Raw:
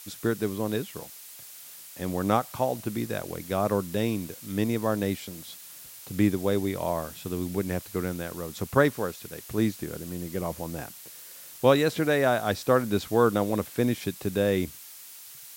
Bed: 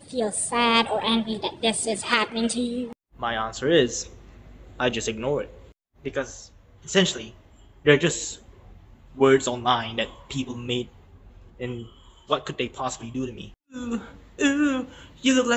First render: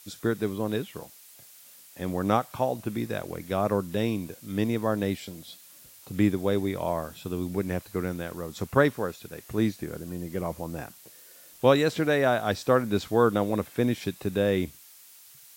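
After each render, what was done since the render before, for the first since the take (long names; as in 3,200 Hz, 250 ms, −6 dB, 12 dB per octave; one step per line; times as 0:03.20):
noise reduction from a noise print 6 dB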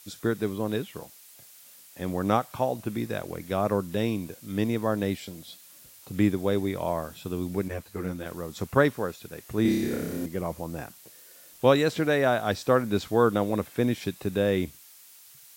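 0:07.68–0:08.26: string-ensemble chorus
0:09.62–0:10.26: flutter between parallel walls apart 5.2 metres, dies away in 1.2 s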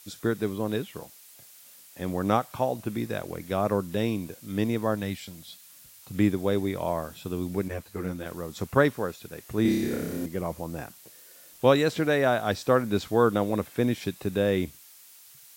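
0:04.95–0:06.15: parametric band 410 Hz −8.5 dB 1.4 octaves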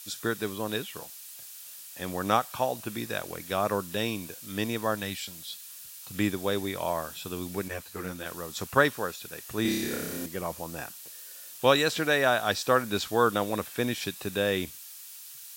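tilt shelving filter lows −6.5 dB, about 810 Hz
notch filter 2,100 Hz, Q 11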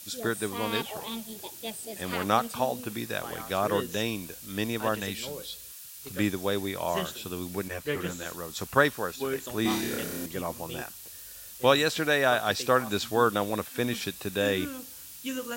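mix in bed −14.5 dB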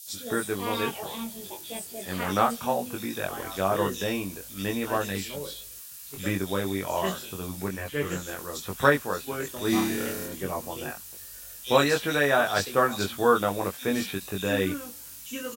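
double-tracking delay 21 ms −3 dB
multiband delay without the direct sound highs, lows 70 ms, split 3,400 Hz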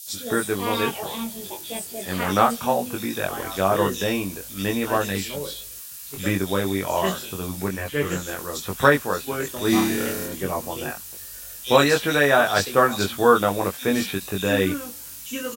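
level +5 dB
brickwall limiter −2 dBFS, peak gain reduction 1.5 dB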